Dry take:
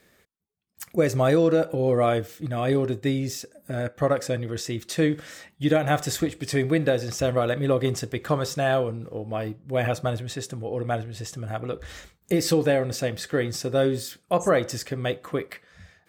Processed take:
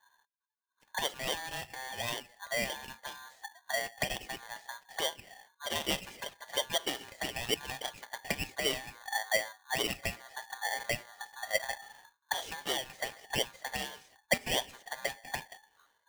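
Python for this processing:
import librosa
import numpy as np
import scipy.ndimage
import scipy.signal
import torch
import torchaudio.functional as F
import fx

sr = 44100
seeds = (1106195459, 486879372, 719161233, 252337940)

y = fx.auto_wah(x, sr, base_hz=310.0, top_hz=2000.0, q=6.3, full_db=-18.5, direction='up')
y = y * np.sign(np.sin(2.0 * np.pi * 1300.0 * np.arange(len(y)) / sr))
y = F.gain(torch.from_numpy(y), 6.0).numpy()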